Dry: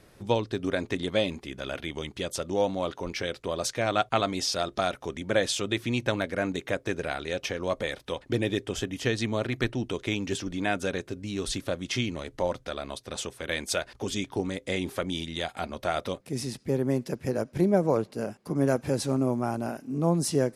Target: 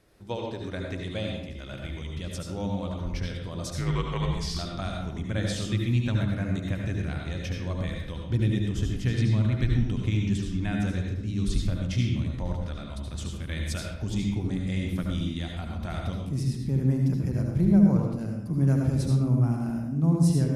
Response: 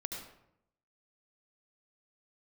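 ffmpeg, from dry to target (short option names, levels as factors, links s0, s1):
-filter_complex "[0:a]asubboost=boost=11:cutoff=140,asettb=1/sr,asplit=3[s0][s1][s2];[s0]atrim=end=3.744[s3];[s1]atrim=start=3.74:end=4.59,asetpts=PTS-STARTPTS,afade=t=in:d=0.004:c=qsin,afade=t=out:st=0.846:d=0.004:c=qsin,afreqshift=-260[s4];[s2]atrim=start=4.586[s5];[s3][s4]acrossfade=d=0.004:c1=hsin:c2=qsin[s6];[s6][s5]acrossfade=d=0.004:c1=qsin:c2=hsin[s7];[1:a]atrim=start_sample=2205[s8];[s7][s8]afir=irnorm=-1:irlink=0,volume=0.531"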